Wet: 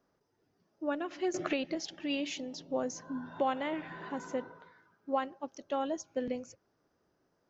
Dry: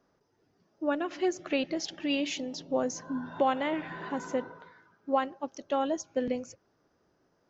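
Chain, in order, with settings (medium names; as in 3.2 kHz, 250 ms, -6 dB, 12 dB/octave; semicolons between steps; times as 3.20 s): 1.34–1.75 s: three bands compressed up and down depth 100%; trim -4.5 dB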